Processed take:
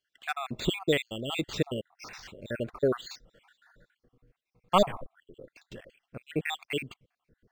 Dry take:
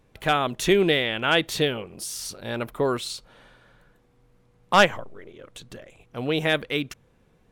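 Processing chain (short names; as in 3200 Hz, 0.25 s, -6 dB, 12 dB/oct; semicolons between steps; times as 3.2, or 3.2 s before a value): random spectral dropouts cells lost 67%; rotary speaker horn 1 Hz; decimation joined by straight lines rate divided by 4×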